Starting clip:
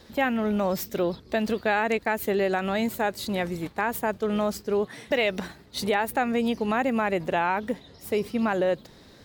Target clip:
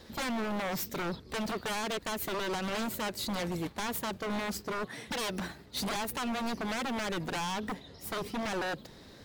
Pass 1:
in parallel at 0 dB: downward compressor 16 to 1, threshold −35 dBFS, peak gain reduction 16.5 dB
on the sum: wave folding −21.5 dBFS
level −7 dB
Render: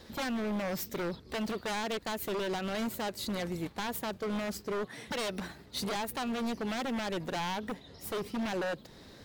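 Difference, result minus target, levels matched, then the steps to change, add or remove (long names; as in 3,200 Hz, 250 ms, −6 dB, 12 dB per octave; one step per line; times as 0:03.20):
downward compressor: peak gain reduction +10.5 dB
change: downward compressor 16 to 1, threshold −24 dBFS, peak gain reduction 6 dB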